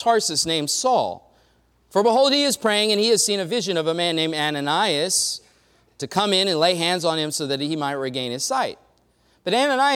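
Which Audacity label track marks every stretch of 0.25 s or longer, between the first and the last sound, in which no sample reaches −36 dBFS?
1.180000	1.930000	silence
5.380000	6.000000	silence
8.740000	9.460000	silence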